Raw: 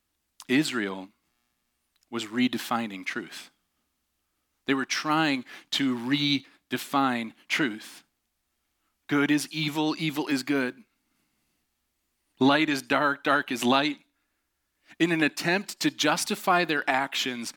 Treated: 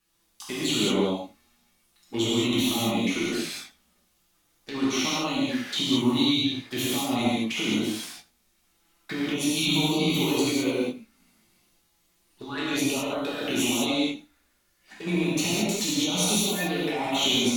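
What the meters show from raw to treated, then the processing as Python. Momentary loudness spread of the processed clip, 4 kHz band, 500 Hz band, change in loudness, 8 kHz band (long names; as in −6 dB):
13 LU, +4.5 dB, +1.5 dB, +1.0 dB, +7.5 dB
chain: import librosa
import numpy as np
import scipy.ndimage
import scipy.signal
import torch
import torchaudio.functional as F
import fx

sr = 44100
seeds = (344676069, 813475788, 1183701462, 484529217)

y = fx.hum_notches(x, sr, base_hz=50, count=6)
y = fx.over_compress(y, sr, threshold_db=-30.0, ratio=-1.0)
y = fx.fold_sine(y, sr, drive_db=5, ceiling_db=-11.5)
y = fx.filter_lfo_notch(y, sr, shape='saw_up', hz=6.7, low_hz=590.0, high_hz=2800.0, q=1.9)
y = fx.env_flanger(y, sr, rest_ms=6.1, full_db=-22.0)
y = fx.doubler(y, sr, ms=18.0, db=-11.0)
y = y + 10.0 ** (-20.5 / 20.0) * np.pad(y, (int(83 * sr / 1000.0), 0))[:len(y)]
y = fx.rev_gated(y, sr, seeds[0], gate_ms=240, shape='flat', drr_db=-8.0)
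y = F.gain(torch.from_numpy(y), -8.5).numpy()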